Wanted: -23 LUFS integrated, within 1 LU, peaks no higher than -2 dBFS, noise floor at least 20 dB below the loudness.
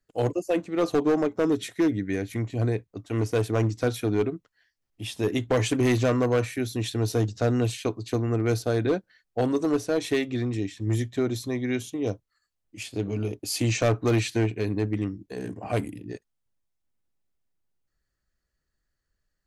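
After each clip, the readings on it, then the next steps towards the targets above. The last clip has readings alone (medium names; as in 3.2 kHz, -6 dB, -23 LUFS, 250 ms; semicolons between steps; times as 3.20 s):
clipped samples 1.1%; clipping level -17.0 dBFS; loudness -26.5 LUFS; peak level -17.0 dBFS; loudness target -23.0 LUFS
-> clip repair -17 dBFS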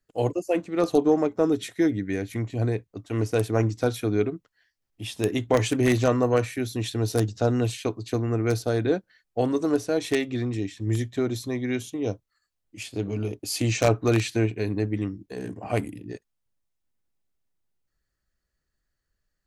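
clipped samples 0.0%; loudness -26.0 LUFS; peak level -8.0 dBFS; loudness target -23.0 LUFS
-> trim +3 dB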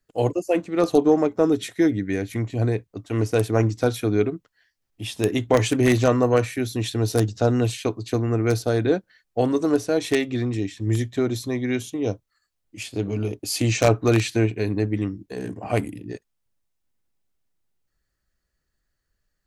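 loudness -23.0 LUFS; peak level -5.0 dBFS; noise floor -77 dBFS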